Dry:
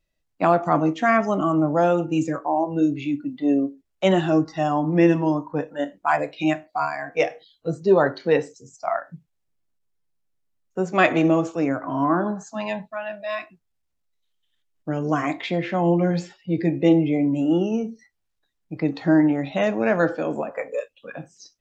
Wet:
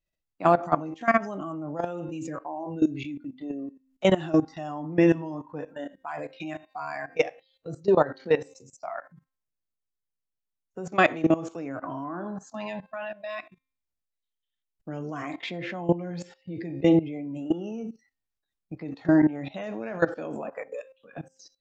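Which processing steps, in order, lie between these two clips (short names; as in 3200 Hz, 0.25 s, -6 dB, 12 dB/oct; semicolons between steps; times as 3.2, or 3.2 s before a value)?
de-hum 264.1 Hz, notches 18; level quantiser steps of 17 dB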